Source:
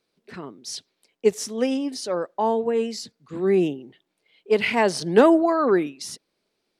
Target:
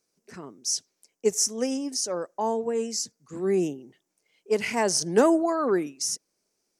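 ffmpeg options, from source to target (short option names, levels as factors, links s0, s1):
-af "highshelf=f=4800:t=q:w=3:g=8.5,volume=0.596"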